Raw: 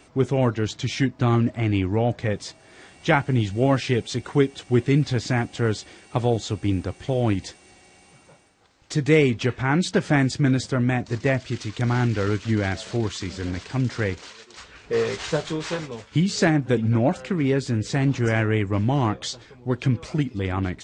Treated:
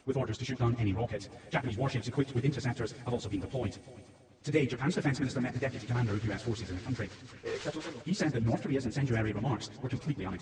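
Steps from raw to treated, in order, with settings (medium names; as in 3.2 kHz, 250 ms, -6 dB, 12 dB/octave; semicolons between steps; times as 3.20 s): plain phase-vocoder stretch 0.5×; multi-head delay 109 ms, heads first and third, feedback 48%, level -18 dB; trim -7 dB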